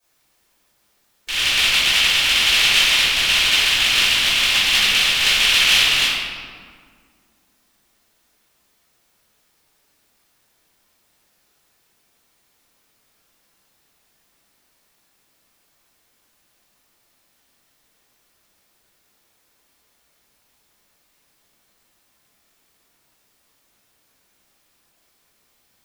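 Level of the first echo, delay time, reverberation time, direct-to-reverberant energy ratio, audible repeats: none, none, 1.9 s, -16.5 dB, none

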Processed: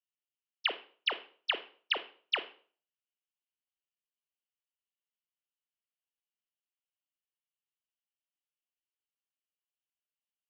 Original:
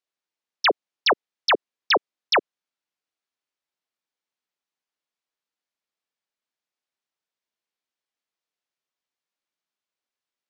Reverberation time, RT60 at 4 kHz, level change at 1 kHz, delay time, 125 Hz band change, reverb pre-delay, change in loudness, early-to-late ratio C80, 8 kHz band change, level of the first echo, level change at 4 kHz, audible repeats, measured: 0.45 s, 0.40 s, -18.0 dB, none, n/a, 22 ms, -11.5 dB, 19.0 dB, n/a, none, -7.5 dB, none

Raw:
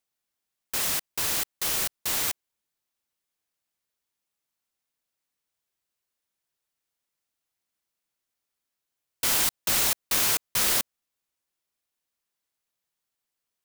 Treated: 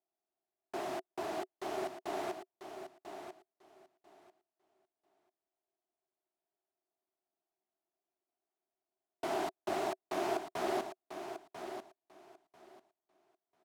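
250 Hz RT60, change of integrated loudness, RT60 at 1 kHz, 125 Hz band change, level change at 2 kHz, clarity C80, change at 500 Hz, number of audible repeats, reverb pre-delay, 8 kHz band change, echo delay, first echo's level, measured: none, -16.0 dB, none, -13.0 dB, -13.0 dB, none, +4.5 dB, 2, none, -27.0 dB, 0.993 s, -9.0 dB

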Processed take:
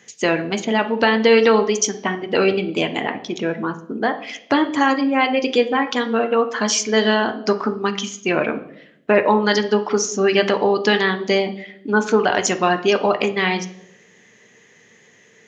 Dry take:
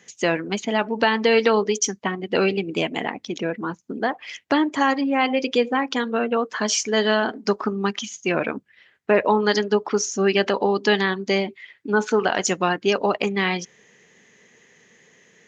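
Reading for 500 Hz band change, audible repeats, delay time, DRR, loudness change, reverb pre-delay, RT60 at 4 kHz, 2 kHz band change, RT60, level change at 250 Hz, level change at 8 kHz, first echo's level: +3.5 dB, none, none, 7.0 dB, +3.0 dB, 7 ms, 0.65 s, +3.0 dB, 0.80 s, +3.0 dB, n/a, none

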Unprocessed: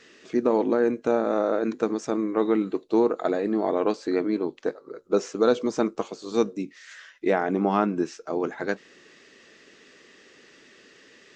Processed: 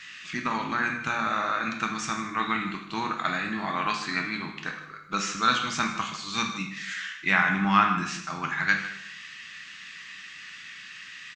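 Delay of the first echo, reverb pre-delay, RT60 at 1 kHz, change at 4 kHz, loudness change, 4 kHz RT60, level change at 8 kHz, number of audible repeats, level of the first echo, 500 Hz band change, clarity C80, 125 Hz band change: 0.154 s, 4 ms, 0.75 s, +11.0 dB, -1.5 dB, 0.70 s, n/a, 1, -14.5 dB, -17.5 dB, 8.5 dB, +2.5 dB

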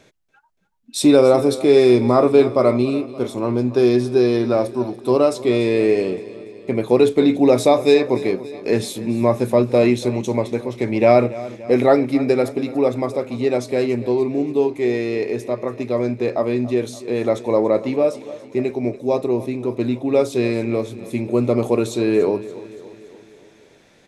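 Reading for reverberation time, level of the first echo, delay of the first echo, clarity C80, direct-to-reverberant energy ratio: none, -17.0 dB, 0.286 s, none, none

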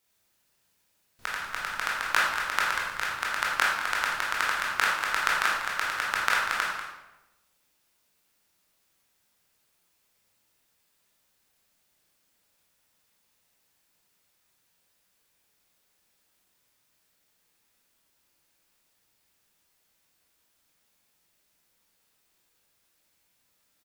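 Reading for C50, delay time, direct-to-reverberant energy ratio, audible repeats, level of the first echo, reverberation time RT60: 0.5 dB, 0.192 s, -5.0 dB, 1, -10.0 dB, 1.0 s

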